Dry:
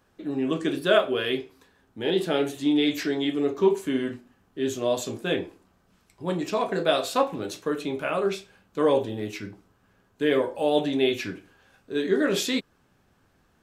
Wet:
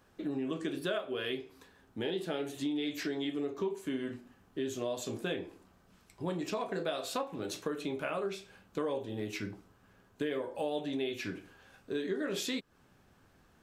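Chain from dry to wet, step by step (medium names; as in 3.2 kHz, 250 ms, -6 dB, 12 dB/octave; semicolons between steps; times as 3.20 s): compression 5:1, threshold -33 dBFS, peak gain reduction 17 dB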